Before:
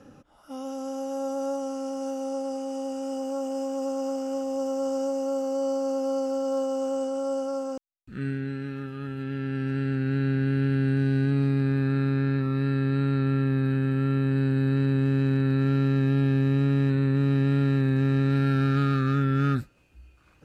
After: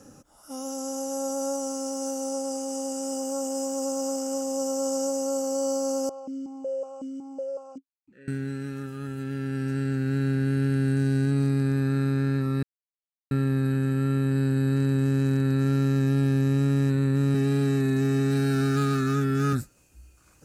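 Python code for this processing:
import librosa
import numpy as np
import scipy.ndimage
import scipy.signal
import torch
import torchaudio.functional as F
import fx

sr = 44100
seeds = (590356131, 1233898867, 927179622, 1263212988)

y = fx.vowel_held(x, sr, hz=5.4, at=(6.09, 8.28))
y = fx.comb(y, sr, ms=4.7, depth=0.65, at=(17.34, 19.53))
y = fx.edit(y, sr, fx.silence(start_s=12.63, length_s=0.68), tone=tone)
y = fx.high_shelf_res(y, sr, hz=4800.0, db=13.0, q=1.5)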